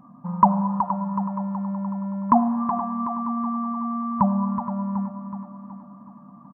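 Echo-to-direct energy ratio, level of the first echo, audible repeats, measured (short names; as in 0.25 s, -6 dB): -6.5 dB, -8.0 dB, 5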